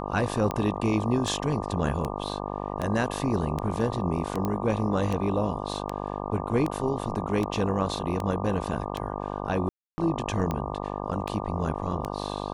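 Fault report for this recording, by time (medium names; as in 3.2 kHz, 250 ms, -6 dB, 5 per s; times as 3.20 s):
buzz 50 Hz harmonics 24 -33 dBFS
tick 78 rpm -16 dBFS
4.45 s: pop -16 dBFS
9.69–9.98 s: dropout 290 ms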